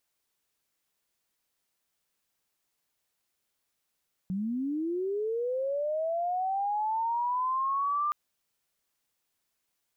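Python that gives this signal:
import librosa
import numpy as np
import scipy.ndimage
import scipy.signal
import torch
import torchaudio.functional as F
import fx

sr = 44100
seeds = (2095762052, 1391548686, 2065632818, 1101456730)

y = fx.chirp(sr, length_s=3.82, from_hz=180.0, to_hz=1200.0, law='linear', from_db=-28.5, to_db=-25.5)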